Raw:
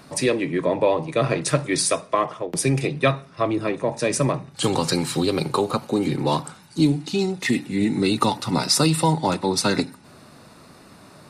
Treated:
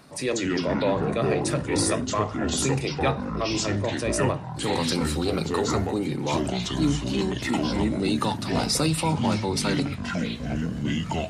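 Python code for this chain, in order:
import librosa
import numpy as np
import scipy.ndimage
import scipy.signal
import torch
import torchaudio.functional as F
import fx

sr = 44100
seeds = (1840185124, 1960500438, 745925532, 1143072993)

y = fx.echo_pitch(x, sr, ms=138, semitones=-5, count=3, db_per_echo=-3.0)
y = fx.transient(y, sr, attack_db=-5, sustain_db=1)
y = y * 10.0 ** (-4.5 / 20.0)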